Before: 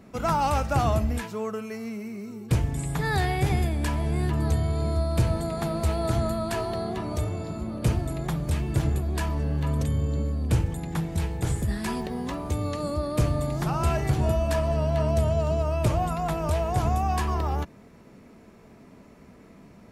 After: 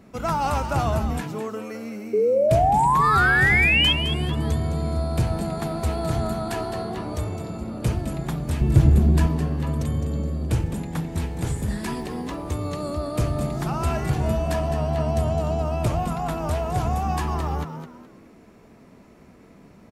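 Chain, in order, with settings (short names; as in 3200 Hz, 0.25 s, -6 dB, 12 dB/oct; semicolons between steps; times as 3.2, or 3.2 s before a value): 2.13–3.93 painted sound rise 410–3300 Hz -19 dBFS; 8.61–9.27 low shelf 370 Hz +10.5 dB; on a send: frequency-shifting echo 0.211 s, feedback 31%, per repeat +85 Hz, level -9.5 dB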